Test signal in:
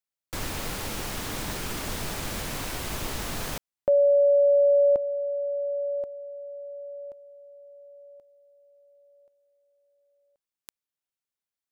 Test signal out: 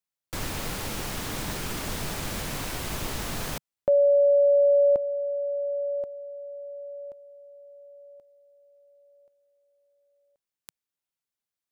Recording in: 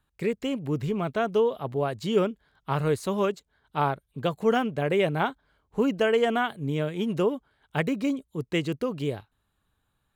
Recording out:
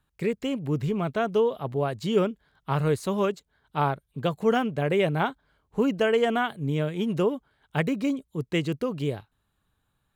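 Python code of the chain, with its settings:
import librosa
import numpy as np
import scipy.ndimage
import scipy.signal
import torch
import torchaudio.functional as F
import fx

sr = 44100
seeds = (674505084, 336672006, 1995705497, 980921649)

y = fx.peak_eq(x, sr, hz=150.0, db=2.5, octaves=0.85)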